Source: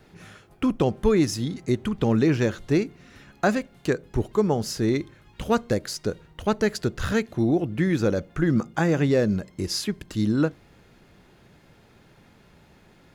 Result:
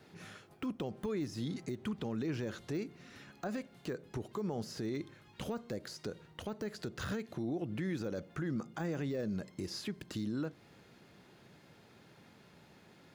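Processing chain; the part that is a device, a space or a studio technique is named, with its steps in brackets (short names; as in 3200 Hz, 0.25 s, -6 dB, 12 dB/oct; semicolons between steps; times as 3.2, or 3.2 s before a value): broadcast voice chain (HPF 110 Hz 12 dB/oct; de-esser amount 100%; compressor 4:1, threshold -26 dBFS, peak gain reduction 9 dB; bell 4500 Hz +2.5 dB; limiter -24.5 dBFS, peak gain reduction 9.5 dB); gain -4.5 dB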